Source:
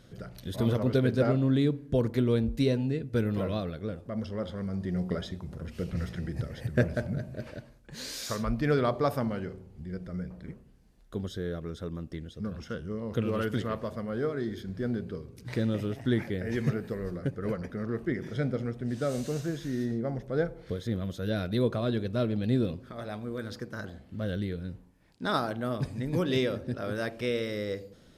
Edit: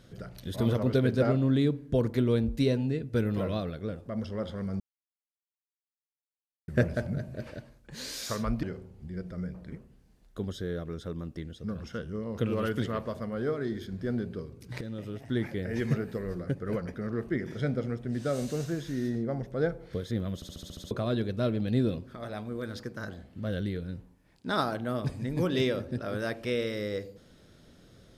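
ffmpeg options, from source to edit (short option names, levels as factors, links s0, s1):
-filter_complex "[0:a]asplit=13[s0][s1][s2][s3][s4][s5][s6][s7][s8][s9][s10][s11][s12];[s0]atrim=end=4.8,asetpts=PTS-STARTPTS,afade=t=out:st=4.796:d=0.004:c=hsin[s13];[s1]atrim=start=4.8:end=6.68,asetpts=PTS-STARTPTS,volume=0[s14];[s2]atrim=start=6.68:end=8.632,asetpts=PTS-STARTPTS,afade=t=in:d=0.004:c=hsin[s15];[s3]atrim=start=9.388:end=15.57,asetpts=PTS-STARTPTS,afade=t=out:st=6.178:d=0.004:c=hsin:silence=0.237137[s16];[s4]atrim=start=15.57:end=21.182,asetpts=PTS-STARTPTS,afade=t=in:d=0.9:silence=0.237137[s17];[s5]atrim=start=21.108:end=21.182[s18];[s6]atrim=start=21.108:end=21.182[s19];[s7]atrim=start=21.108:end=21.182[s20];[s8]atrim=start=21.108:end=21.182[s21];[s9]atrim=start=21.108:end=21.182[s22];[s10]atrim=start=21.108:end=21.182[s23];[s11]atrim=start=21.108:end=21.182[s24];[s12]atrim=start=21.668[s25];[s13][s14][s15]concat=n=3:v=0:a=1[s26];[s16][s17]concat=n=2:v=0:a=1[s27];[s26][s27]acrossfade=d=0.004:c1=hsin:c2=hsin[s28];[s28][s18]acrossfade=d=0.004:c1=hsin:c2=hsin[s29];[s29][s19]acrossfade=d=0.004:c1=hsin:c2=hsin[s30];[s30][s20]acrossfade=d=0.004:c1=hsin:c2=hsin[s31];[s31][s21]acrossfade=d=0.004:c1=hsin:c2=hsin[s32];[s32][s22]acrossfade=d=0.004:c1=hsin:c2=hsin[s33];[s33][s23]acrossfade=d=0.004:c1=hsin:c2=hsin[s34];[s34][s24]acrossfade=d=0.004:c1=hsin:c2=hsin[s35];[s35][s25]acrossfade=d=0.004:c1=hsin:c2=hsin"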